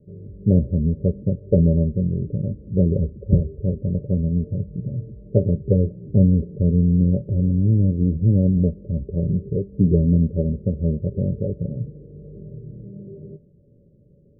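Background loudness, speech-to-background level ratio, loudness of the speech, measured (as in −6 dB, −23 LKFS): −41.0 LKFS, 20.0 dB, −21.0 LKFS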